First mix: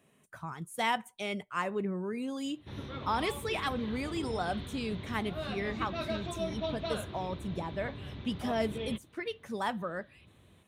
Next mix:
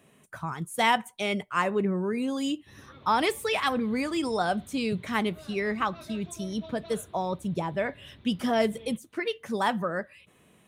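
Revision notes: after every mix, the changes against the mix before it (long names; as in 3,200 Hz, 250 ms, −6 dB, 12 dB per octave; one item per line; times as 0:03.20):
speech +7.0 dB
background −10.5 dB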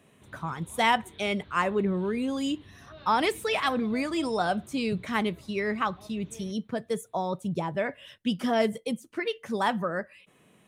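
speech: add high-shelf EQ 9,500 Hz −4.5 dB
background: entry −2.45 s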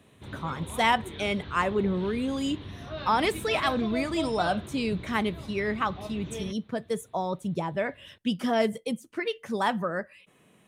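background +11.5 dB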